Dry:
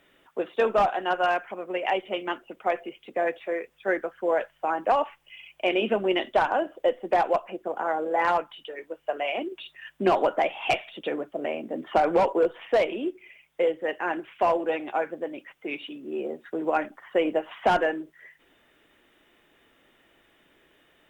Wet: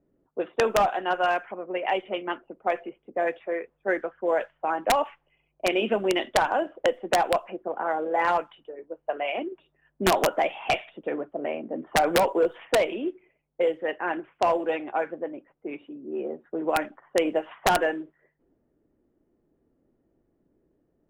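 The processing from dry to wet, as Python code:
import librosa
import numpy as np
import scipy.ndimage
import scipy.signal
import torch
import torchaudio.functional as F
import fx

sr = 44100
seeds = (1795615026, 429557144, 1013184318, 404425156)

y = (np.mod(10.0 ** (12.5 / 20.0) * x + 1.0, 2.0) - 1.0) / 10.0 ** (12.5 / 20.0)
y = fx.env_lowpass(y, sr, base_hz=330.0, full_db=-20.0)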